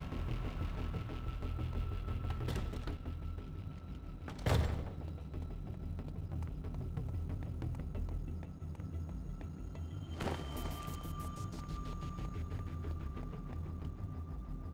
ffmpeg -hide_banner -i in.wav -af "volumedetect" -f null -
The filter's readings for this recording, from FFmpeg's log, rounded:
mean_volume: -40.1 dB
max_volume: -20.7 dB